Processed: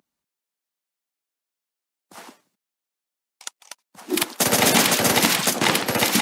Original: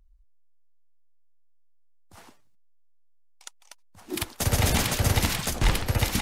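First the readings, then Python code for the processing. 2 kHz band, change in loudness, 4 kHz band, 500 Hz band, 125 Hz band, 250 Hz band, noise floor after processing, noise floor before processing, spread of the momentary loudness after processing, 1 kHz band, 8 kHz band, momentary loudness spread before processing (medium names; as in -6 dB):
+9.0 dB, +7.0 dB, +9.0 dB, +9.0 dB, -6.5 dB, +7.5 dB, under -85 dBFS, -56 dBFS, 9 LU, +9.0 dB, +9.0 dB, 10 LU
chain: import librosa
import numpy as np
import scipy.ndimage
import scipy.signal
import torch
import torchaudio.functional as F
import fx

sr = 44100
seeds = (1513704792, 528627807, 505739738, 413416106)

y = scipy.signal.sosfilt(scipy.signal.butter(4, 190.0, 'highpass', fs=sr, output='sos'), x)
y = y * 10.0 ** (9.0 / 20.0)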